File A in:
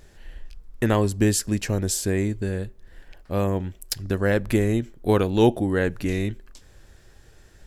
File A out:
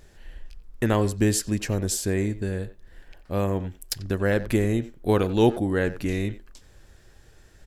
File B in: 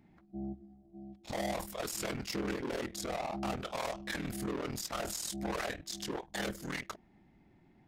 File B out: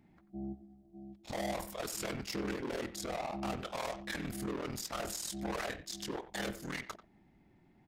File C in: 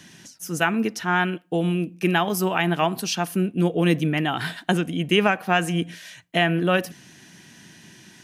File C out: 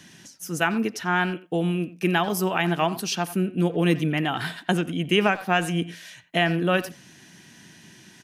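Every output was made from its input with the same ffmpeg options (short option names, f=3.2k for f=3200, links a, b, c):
-filter_complex "[0:a]asplit=2[a][b];[b]adelay=90,highpass=300,lowpass=3.4k,asoftclip=type=hard:threshold=-15.5dB,volume=-14dB[c];[a][c]amix=inputs=2:normalize=0,volume=-1.5dB"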